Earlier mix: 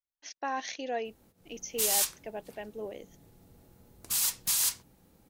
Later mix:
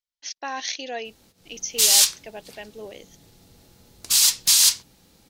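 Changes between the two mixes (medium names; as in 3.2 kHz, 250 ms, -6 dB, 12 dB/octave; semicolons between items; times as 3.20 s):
background +3.5 dB; master: add peaking EQ 4.5 kHz +13 dB 2.1 oct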